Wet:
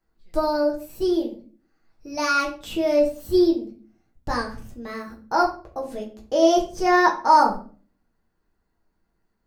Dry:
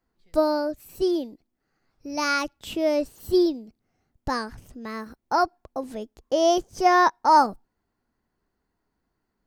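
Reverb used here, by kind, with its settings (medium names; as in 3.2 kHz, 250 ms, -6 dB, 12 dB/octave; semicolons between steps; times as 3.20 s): simulated room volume 31 m³, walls mixed, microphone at 0.56 m; trim -2 dB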